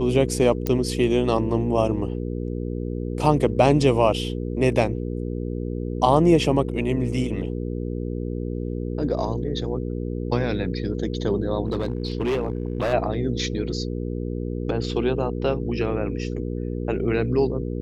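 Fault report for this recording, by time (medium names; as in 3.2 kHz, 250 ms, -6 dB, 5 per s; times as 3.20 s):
hum 60 Hz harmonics 8 -28 dBFS
0.67 s: pop -10 dBFS
11.67–12.94 s: clipped -19.5 dBFS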